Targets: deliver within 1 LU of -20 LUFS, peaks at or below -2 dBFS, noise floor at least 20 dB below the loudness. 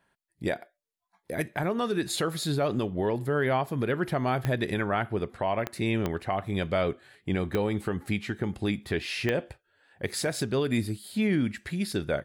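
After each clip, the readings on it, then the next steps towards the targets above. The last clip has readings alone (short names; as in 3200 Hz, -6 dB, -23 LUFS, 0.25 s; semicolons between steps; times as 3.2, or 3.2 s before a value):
clicks 5; loudness -29.5 LUFS; peak -14.0 dBFS; loudness target -20.0 LUFS
-> de-click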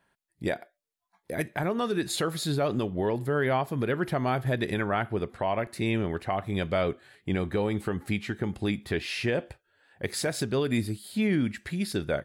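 clicks 0; loudness -29.5 LUFS; peak -15.5 dBFS; loudness target -20.0 LUFS
-> gain +9.5 dB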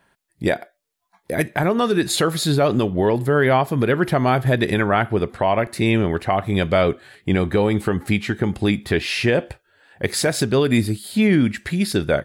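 loudness -20.0 LUFS; peak -6.0 dBFS; noise floor -70 dBFS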